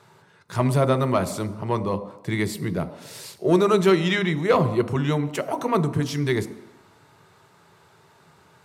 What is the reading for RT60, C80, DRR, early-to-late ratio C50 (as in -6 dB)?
1.0 s, 15.5 dB, 10.0 dB, 14.0 dB